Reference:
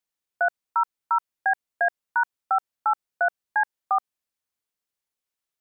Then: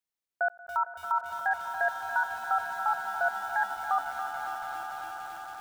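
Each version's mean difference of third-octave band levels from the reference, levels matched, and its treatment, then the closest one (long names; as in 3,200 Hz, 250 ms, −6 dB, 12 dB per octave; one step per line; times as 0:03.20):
9.5 dB: echo that builds up and dies away 91 ms, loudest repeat 8, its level −16 dB
feedback echo at a low word length 282 ms, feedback 80%, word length 6 bits, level −11.5 dB
level −5.5 dB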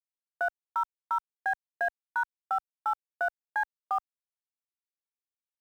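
6.5 dB: mu-law and A-law mismatch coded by A
brickwall limiter −25 dBFS, peak gain reduction 11 dB
high-pass filter 56 Hz 6 dB per octave
level +4.5 dB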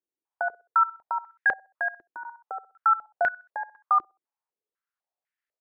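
3.5 dB: dynamic equaliser 680 Hz, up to −7 dB, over −37 dBFS, Q 0.92
on a send: repeating echo 63 ms, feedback 33%, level −17.5 dB
on the sum: band-pass on a step sequencer 4 Hz 350–1,800 Hz
level +8.5 dB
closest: third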